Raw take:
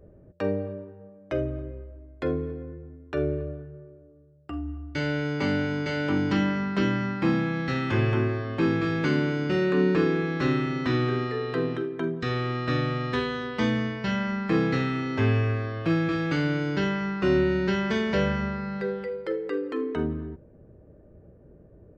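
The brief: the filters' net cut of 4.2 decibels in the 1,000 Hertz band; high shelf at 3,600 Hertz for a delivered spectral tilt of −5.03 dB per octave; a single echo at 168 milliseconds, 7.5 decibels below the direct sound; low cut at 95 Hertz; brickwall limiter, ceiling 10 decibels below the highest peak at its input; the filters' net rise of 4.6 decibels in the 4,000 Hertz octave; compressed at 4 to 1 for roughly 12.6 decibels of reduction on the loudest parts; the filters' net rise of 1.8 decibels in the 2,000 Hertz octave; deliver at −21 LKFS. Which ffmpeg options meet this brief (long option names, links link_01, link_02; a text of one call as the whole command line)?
ffmpeg -i in.wav -af "highpass=95,equalizer=frequency=1000:width_type=o:gain=-8,equalizer=frequency=2000:width_type=o:gain=4.5,highshelf=frequency=3600:gain=-5.5,equalizer=frequency=4000:width_type=o:gain=8.5,acompressor=threshold=-35dB:ratio=4,alimiter=level_in=7dB:limit=-24dB:level=0:latency=1,volume=-7dB,aecho=1:1:168:0.422,volume=18dB" out.wav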